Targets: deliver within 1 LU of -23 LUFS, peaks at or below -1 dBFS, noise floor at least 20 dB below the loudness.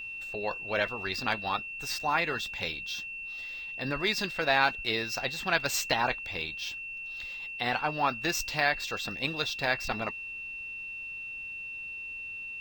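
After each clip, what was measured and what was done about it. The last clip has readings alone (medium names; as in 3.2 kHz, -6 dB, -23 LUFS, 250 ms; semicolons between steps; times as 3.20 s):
steady tone 2.7 kHz; tone level -37 dBFS; loudness -31.0 LUFS; peak level -9.0 dBFS; loudness target -23.0 LUFS
-> band-stop 2.7 kHz, Q 30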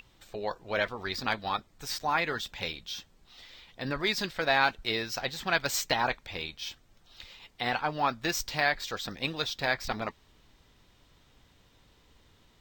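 steady tone not found; loudness -31.0 LUFS; peak level -9.5 dBFS; loudness target -23.0 LUFS
-> trim +8 dB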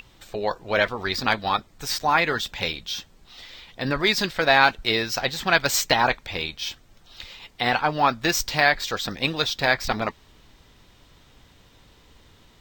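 loudness -23.0 LUFS; peak level -1.5 dBFS; noise floor -56 dBFS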